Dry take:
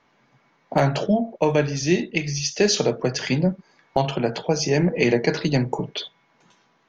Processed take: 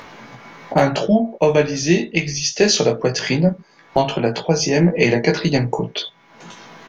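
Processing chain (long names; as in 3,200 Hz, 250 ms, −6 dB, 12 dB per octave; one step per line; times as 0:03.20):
upward compression, threshold −29 dBFS
double-tracking delay 18 ms −4.5 dB
level +3.5 dB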